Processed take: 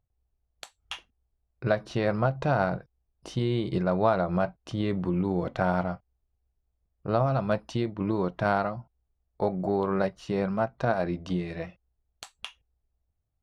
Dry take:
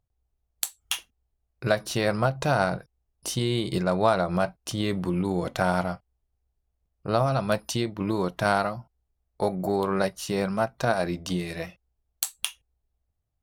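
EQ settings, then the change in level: tape spacing loss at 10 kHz 25 dB; 0.0 dB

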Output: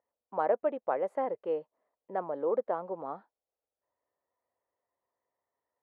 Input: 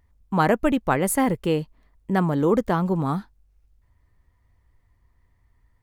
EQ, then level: ladder band-pass 650 Hz, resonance 50%; +1.5 dB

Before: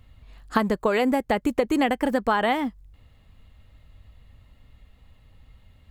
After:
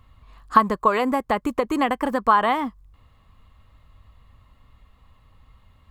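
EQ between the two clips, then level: bell 1100 Hz +14.5 dB 0.44 oct; -1.5 dB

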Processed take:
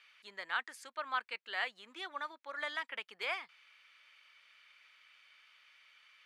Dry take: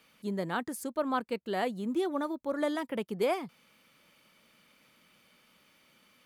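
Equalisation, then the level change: ladder band-pass 2400 Hz, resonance 20%; +14.0 dB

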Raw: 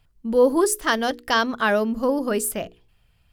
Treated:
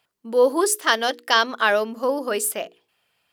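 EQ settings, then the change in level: HPF 400 Hz 12 dB/oct; dynamic EQ 3500 Hz, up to +4 dB, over -36 dBFS, Q 0.91; +1.5 dB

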